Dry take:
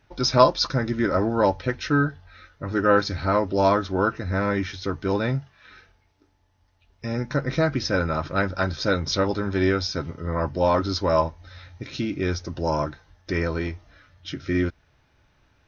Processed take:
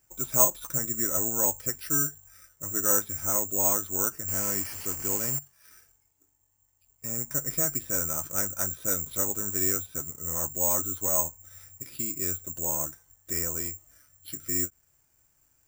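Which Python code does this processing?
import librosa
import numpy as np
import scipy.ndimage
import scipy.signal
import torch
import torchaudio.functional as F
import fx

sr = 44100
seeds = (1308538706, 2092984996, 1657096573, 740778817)

y = fx.delta_mod(x, sr, bps=16000, step_db=-25.5, at=(4.28, 5.39))
y = (np.kron(scipy.signal.resample_poly(y, 1, 6), np.eye(6)[0]) * 6)[:len(y)]
y = fx.end_taper(y, sr, db_per_s=490.0)
y = F.gain(torch.from_numpy(y), -13.0).numpy()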